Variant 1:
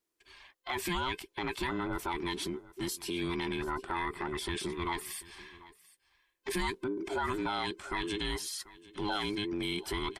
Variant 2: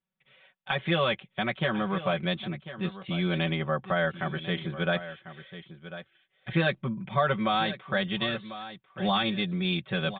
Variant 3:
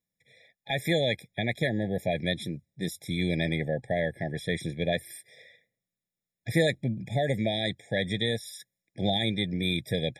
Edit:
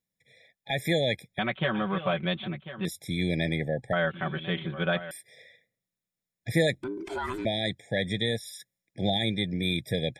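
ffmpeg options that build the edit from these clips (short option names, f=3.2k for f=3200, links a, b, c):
-filter_complex "[1:a]asplit=2[a][b];[2:a]asplit=4[c][d][e][f];[c]atrim=end=1.392[g];[a]atrim=start=1.388:end=2.852[h];[d]atrim=start=2.848:end=3.932[i];[b]atrim=start=3.928:end=5.112[j];[e]atrim=start=5.108:end=6.832[k];[0:a]atrim=start=6.828:end=7.452[l];[f]atrim=start=7.448[m];[g][h]acrossfade=d=0.004:c1=hsin:c2=hsin[n];[n][i]acrossfade=d=0.004:c1=hsin:c2=hsin[o];[o][j]acrossfade=d=0.004:c1=hsin:c2=hsin[p];[p][k]acrossfade=d=0.004:c1=hsin:c2=hsin[q];[q][l]acrossfade=d=0.004:c1=hsin:c2=hsin[r];[r][m]acrossfade=d=0.004:c1=hsin:c2=hsin"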